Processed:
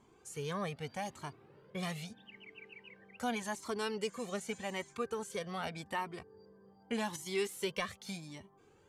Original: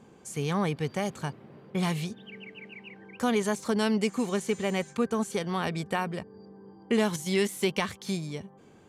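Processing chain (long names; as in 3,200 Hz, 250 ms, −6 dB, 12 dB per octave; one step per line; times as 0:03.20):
parametric band 170 Hz −5 dB 1.7 octaves
flanger whose copies keep moving one way rising 0.83 Hz
level −3 dB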